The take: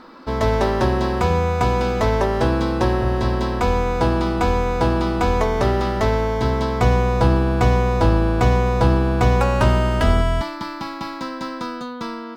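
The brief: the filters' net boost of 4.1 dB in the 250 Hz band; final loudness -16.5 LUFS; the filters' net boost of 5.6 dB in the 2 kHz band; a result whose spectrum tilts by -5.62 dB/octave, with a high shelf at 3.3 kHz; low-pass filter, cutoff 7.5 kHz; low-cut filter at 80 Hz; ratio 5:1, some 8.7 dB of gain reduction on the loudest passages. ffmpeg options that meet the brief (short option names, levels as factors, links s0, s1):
-af "highpass=80,lowpass=7500,equalizer=f=250:t=o:g=5.5,equalizer=f=2000:t=o:g=8.5,highshelf=f=3300:g=-4.5,acompressor=threshold=0.0891:ratio=5,volume=2.66"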